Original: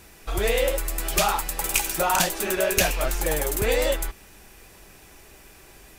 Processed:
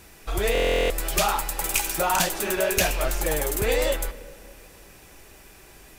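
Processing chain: soft clip -11 dBFS, distortion -24 dB; reverb RT60 2.2 s, pre-delay 7 ms, DRR 15 dB; stuck buffer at 0.53, samples 1024, times 15

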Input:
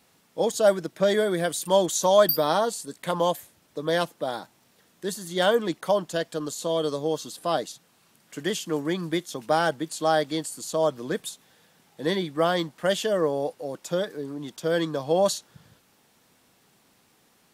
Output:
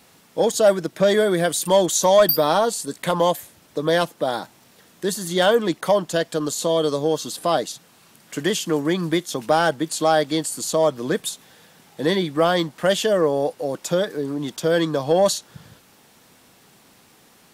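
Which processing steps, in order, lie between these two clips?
in parallel at -1 dB: compressor, threshold -31 dBFS, peak gain reduction 17 dB; on the sum: soft clip -8 dBFS, distortion -24 dB; gain +3.5 dB

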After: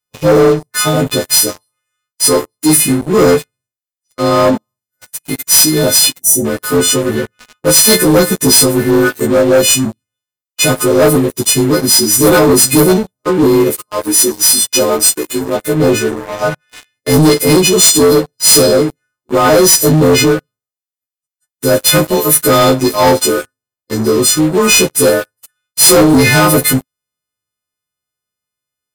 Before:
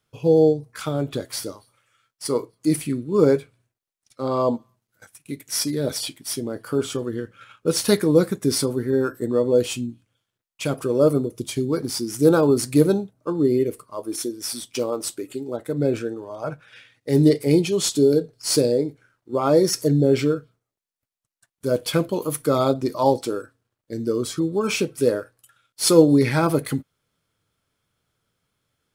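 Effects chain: frequency quantiser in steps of 3 st; sample leveller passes 5; spectral gain 6.2–6.45, 810–5800 Hz -19 dB; gain -4.5 dB

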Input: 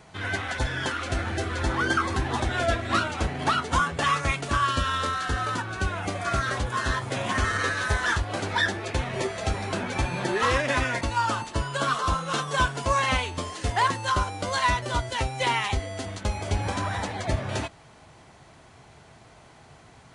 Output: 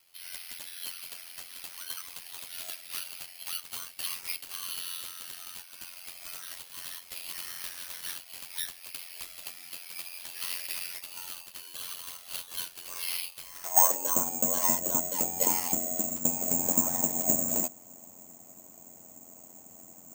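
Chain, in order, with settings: high-pass sweep 2900 Hz -> 200 Hz, 13.38–14.2; ring modulator 44 Hz; fifteen-band EQ 250 Hz +9 dB, 630 Hz +9 dB, 1600 Hz -6 dB, 4000 Hz -8 dB; careless resampling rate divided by 6×, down none, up zero stuff; gain -9.5 dB

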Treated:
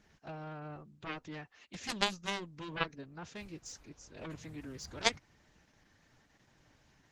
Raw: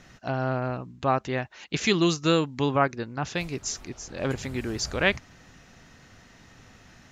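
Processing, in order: formant-preserving pitch shift +3 st; added harmonics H 3 -8 dB, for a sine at -7.5 dBFS; gain +1.5 dB; Opus 16 kbps 48000 Hz

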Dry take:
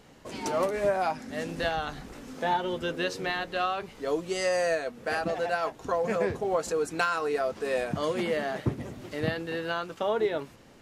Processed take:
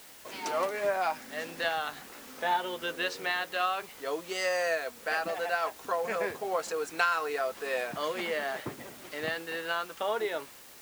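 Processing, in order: HPF 1300 Hz 6 dB/oct; high shelf 5100 Hz -10.5 dB; in parallel at -4 dB: requantised 8-bit, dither triangular

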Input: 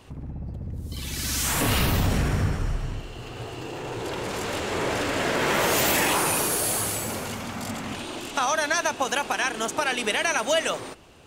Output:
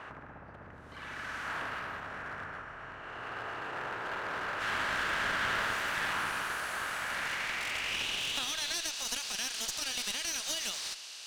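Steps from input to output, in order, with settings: per-bin compression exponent 0.6; tilt -2.5 dB/oct, from 4.59 s +1.5 dB/oct; compressor 6:1, threshold -19 dBFS, peak gain reduction 11 dB; band-pass sweep 1500 Hz -> 4700 Hz, 6.95–8.98; one-sided clip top -35.5 dBFS

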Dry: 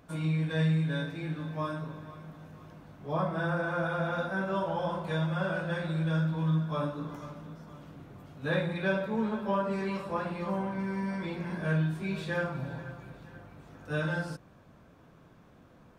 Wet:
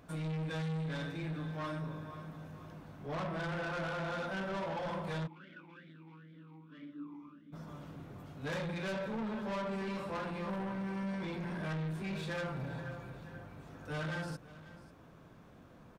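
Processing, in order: soft clip -35 dBFS, distortion -7 dB; echo 0.542 s -17.5 dB; 5.26–7.52 vowel sweep i-u 3.1 Hz -> 1.3 Hz

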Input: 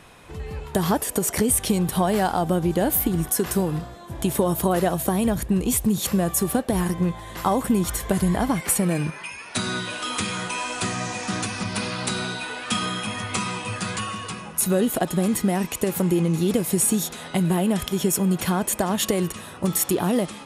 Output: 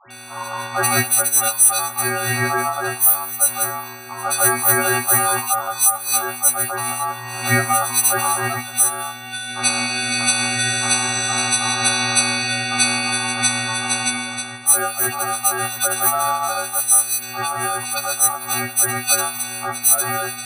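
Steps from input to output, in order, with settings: frequency quantiser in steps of 6 st; in parallel at +1.5 dB: compressor, threshold -25 dBFS, peak gain reduction 20 dB; on the sum: dispersion highs, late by 0.106 s, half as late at 740 Hz; ring modulator 1000 Hz; AGC; on a send: multi-head echo 64 ms, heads first and third, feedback 54%, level -21.5 dB; on the sum: gain -1 dB

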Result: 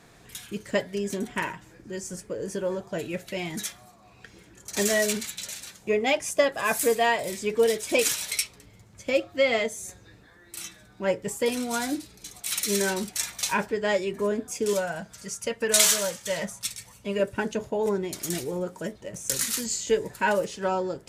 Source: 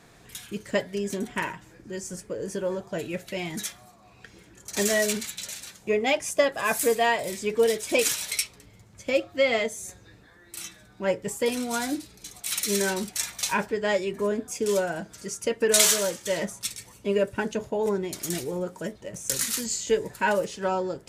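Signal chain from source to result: 14.73–17.2 bell 340 Hz -11.5 dB 0.64 oct

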